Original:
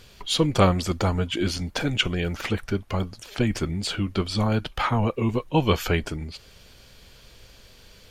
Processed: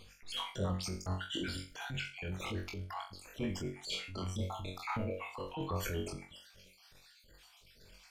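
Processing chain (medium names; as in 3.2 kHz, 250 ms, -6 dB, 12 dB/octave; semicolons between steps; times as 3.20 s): random holes in the spectrogram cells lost 57%; compression 6:1, threshold -25 dBFS, peak gain reduction 10.5 dB; tremolo 8.2 Hz, depth 66%; 3.74–5.43 s: doubling 32 ms -4 dB; flutter echo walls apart 3.7 m, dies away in 0.31 s; transient shaper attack -8 dB, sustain +3 dB; trim -4.5 dB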